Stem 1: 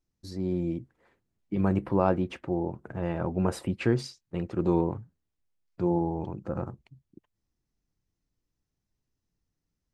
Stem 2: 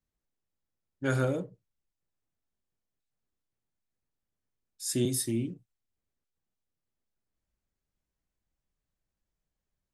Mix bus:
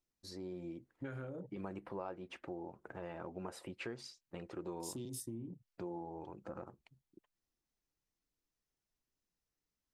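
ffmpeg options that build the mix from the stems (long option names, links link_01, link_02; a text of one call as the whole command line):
ffmpeg -i stem1.wav -i stem2.wav -filter_complex "[0:a]equalizer=frequency=120:width_type=o:width=2.2:gain=-10.5,flanger=delay=0.2:depth=2.3:regen=-69:speed=1.2:shape=triangular,lowshelf=frequency=81:gain=-9.5,volume=1dB[link_01];[1:a]afwtdn=0.00794,acompressor=threshold=-32dB:ratio=6,volume=0dB[link_02];[link_01][link_02]amix=inputs=2:normalize=0,acompressor=threshold=-44dB:ratio=3" out.wav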